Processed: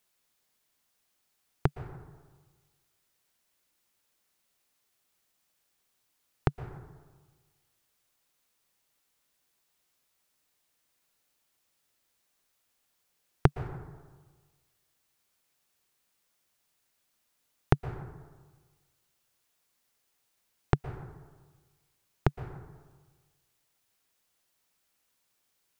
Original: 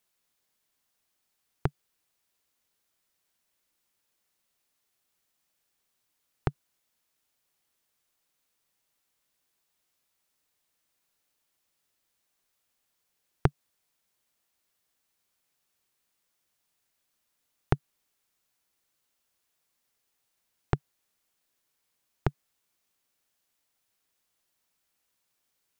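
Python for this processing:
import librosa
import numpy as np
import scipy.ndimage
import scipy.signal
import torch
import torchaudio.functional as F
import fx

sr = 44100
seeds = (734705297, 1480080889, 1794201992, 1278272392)

y = fx.rev_plate(x, sr, seeds[0], rt60_s=1.4, hf_ratio=0.45, predelay_ms=105, drr_db=11.5)
y = F.gain(torch.from_numpy(y), 2.0).numpy()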